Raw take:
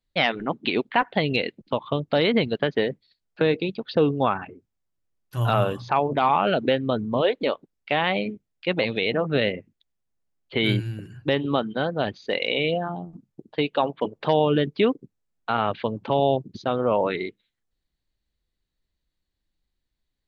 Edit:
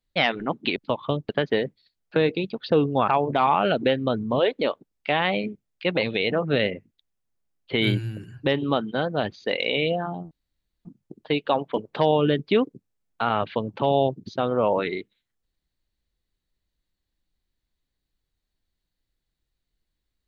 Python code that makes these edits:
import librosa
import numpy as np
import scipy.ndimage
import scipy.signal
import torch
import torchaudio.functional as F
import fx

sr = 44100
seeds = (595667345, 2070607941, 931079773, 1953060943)

y = fx.edit(x, sr, fx.cut(start_s=0.76, length_s=0.83),
    fx.cut(start_s=2.12, length_s=0.42),
    fx.cut(start_s=4.33, length_s=1.57),
    fx.insert_room_tone(at_s=13.13, length_s=0.54), tone=tone)